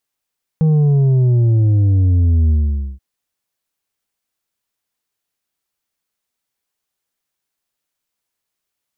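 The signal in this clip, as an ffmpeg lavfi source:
-f lavfi -i "aevalsrc='0.299*clip((2.38-t)/0.49,0,1)*tanh(1.88*sin(2*PI*160*2.38/log(65/160)*(exp(log(65/160)*t/2.38)-1)))/tanh(1.88)':d=2.38:s=44100"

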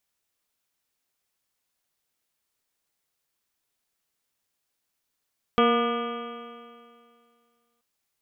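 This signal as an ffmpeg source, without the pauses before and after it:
-f lavfi -i "aevalsrc='0.0794*pow(10,-3*t/2.23)*sin(2*PI*234.27*t)+0.1*pow(10,-3*t/2.23)*sin(2*PI*470.15*t)+0.0501*pow(10,-3*t/2.23)*sin(2*PI*709.23*t)+0.0178*pow(10,-3*t/2.23)*sin(2*PI*953.07*t)+0.1*pow(10,-3*t/2.23)*sin(2*PI*1203.17*t)+0.02*pow(10,-3*t/2.23)*sin(2*PI*1460.97*t)+0.01*pow(10,-3*t/2.23)*sin(2*PI*1727.84*t)+0.0119*pow(10,-3*t/2.23)*sin(2*PI*2005.05*t)+0.0224*pow(10,-3*t/2.23)*sin(2*PI*2293.8*t)+0.0141*pow(10,-3*t/2.23)*sin(2*PI*2595.19*t)+0.0158*pow(10,-3*t/2.23)*sin(2*PI*2910.21*t)+0.0282*pow(10,-3*t/2.23)*sin(2*PI*3239.8*t)':d=2.23:s=44100"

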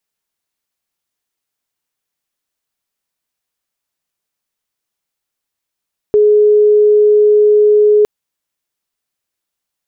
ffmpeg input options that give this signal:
-f lavfi -i "sine=f=420:d=1.91:r=44100,volume=12.56dB"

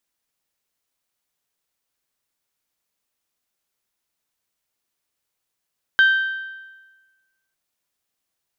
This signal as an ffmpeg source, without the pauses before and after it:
-f lavfi -i "aevalsrc='0.335*pow(10,-3*t/1.31)*sin(2*PI*1560*t)+0.0891*pow(10,-3*t/1.064)*sin(2*PI*3120*t)+0.0237*pow(10,-3*t/1.007)*sin(2*PI*3744*t)+0.00631*pow(10,-3*t/0.942)*sin(2*PI*4680*t)+0.00168*pow(10,-3*t/0.864)*sin(2*PI*6240*t)':d=1.55:s=44100"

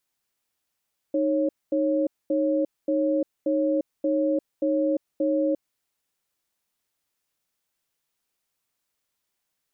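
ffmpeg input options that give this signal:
-f lavfi -i "aevalsrc='0.0708*(sin(2*PI*309*t)+sin(2*PI*550*t))*clip(min(mod(t,0.58),0.35-mod(t,0.58))/0.005,0,1)':d=4.45:s=44100"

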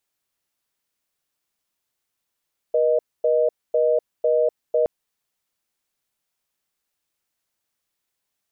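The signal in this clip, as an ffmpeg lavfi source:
-f lavfi -i "aevalsrc='0.119*(sin(2*PI*480*t)+sin(2*PI*620*t))*clip(min(mod(t,0.5),0.25-mod(t,0.5))/0.005,0,1)':d=2.12:s=44100"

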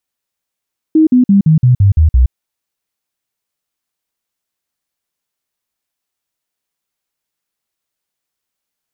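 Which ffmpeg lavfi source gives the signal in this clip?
-f lavfi -i "aevalsrc='0.596*clip(min(mod(t,0.17),0.12-mod(t,0.17))/0.005,0,1)*sin(2*PI*315*pow(2,-floor(t/0.17)/3)*mod(t,0.17))':d=1.36:s=44100"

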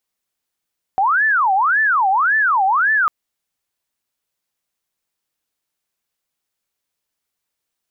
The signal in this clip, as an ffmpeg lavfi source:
-f lavfi -i "aevalsrc='0.237*sin(2*PI*(1258.5*t-501.5/(2*PI*1.8)*sin(2*PI*1.8*t)))':d=2.1:s=44100"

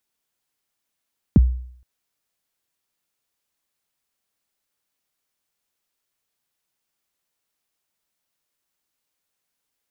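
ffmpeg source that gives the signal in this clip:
-f lavfi -i "aevalsrc='0.501*pow(10,-3*t/0.61)*sin(2*PI*(300*0.026/log(62/300)*(exp(log(62/300)*min(t,0.026)/0.026)-1)+62*max(t-0.026,0)))':d=0.47:s=44100"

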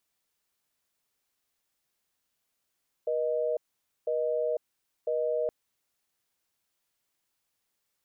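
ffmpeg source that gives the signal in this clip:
-f lavfi -i "aevalsrc='0.0376*(sin(2*PI*480*t)+sin(2*PI*620*t))*clip(min(mod(t,1),0.5-mod(t,1))/0.005,0,1)':d=2.42:s=44100"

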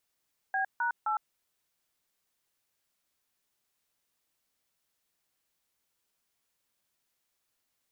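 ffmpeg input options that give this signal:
-f lavfi -i "aevalsrc='0.0335*clip(min(mod(t,0.261),0.108-mod(t,0.261))/0.002,0,1)*(eq(floor(t/0.261),0)*(sin(2*PI*770*mod(t,0.261))+sin(2*PI*1633*mod(t,0.261)))+eq(floor(t/0.261),1)*(sin(2*PI*941*mod(t,0.261))+sin(2*PI*1477*mod(t,0.261)))+eq(floor(t/0.261),2)*(sin(2*PI*852*mod(t,0.261))+sin(2*PI*1336*mod(t,0.261))))':d=0.783:s=44100"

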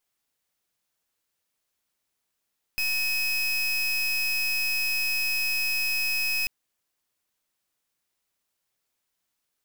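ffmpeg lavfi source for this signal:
-f lavfi -i "aevalsrc='0.0501*(2*lt(mod(2550*t,1),0.3)-1)':d=3.69:s=44100"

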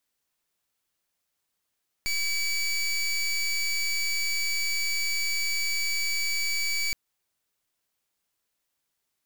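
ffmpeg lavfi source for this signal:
-f lavfi -i "aevalsrc='0.0447*(2*lt(mod(2290*t,1),0.21)-1)':d=4.87:s=44100"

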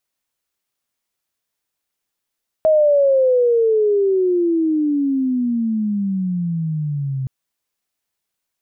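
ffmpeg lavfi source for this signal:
-f lavfi -i "aevalsrc='pow(10,(-10-10*t/4.62)/20)*sin(2*PI*636*4.62/(-27.5*log(2)/12)*(exp(-27.5*log(2)/12*t/4.62)-1))':d=4.62:s=44100"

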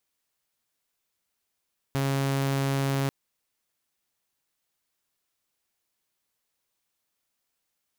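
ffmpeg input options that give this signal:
-f lavfi -i "aevalsrc='0.0841*(2*mod(137*t,1)-1)':d=1.14:s=44100"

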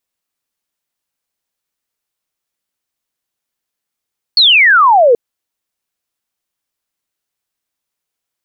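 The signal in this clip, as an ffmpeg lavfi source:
-f lavfi -i "aevalsrc='0.596*clip(t/0.002,0,1)*clip((0.78-t)/0.002,0,1)*sin(2*PI*4500*0.78/log(450/4500)*(exp(log(450/4500)*t/0.78)-1))':d=0.78:s=44100"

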